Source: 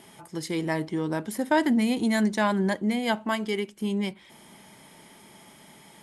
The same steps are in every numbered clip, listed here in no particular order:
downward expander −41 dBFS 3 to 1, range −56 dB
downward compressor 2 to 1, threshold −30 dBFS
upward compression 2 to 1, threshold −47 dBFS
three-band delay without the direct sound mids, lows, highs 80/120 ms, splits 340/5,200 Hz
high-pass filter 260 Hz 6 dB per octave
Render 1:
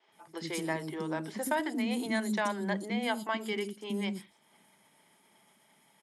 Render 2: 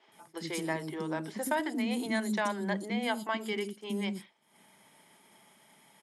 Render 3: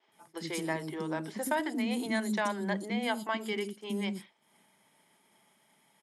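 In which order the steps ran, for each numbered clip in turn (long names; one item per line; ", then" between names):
upward compression, then downward expander, then high-pass filter, then downward compressor, then three-band delay without the direct sound
high-pass filter, then downward compressor, then three-band delay without the direct sound, then downward expander, then upward compression
high-pass filter, then downward compressor, then three-band delay without the direct sound, then upward compression, then downward expander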